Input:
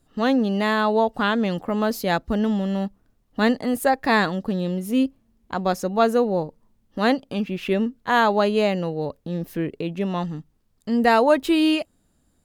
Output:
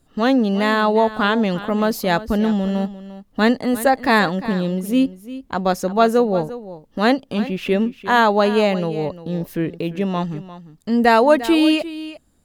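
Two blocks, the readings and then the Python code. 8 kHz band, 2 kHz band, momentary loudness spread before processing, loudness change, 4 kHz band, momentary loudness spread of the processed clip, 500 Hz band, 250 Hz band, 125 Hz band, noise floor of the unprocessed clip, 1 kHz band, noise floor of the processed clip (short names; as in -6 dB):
+3.5 dB, +3.5 dB, 11 LU, +3.5 dB, +3.5 dB, 13 LU, +3.5 dB, +3.5 dB, +3.5 dB, -66 dBFS, +3.5 dB, -57 dBFS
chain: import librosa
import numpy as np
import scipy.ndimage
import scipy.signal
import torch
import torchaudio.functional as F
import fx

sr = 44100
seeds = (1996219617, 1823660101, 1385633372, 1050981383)

y = x + 10.0 ** (-15.0 / 20.0) * np.pad(x, (int(349 * sr / 1000.0), 0))[:len(x)]
y = y * 10.0 ** (3.5 / 20.0)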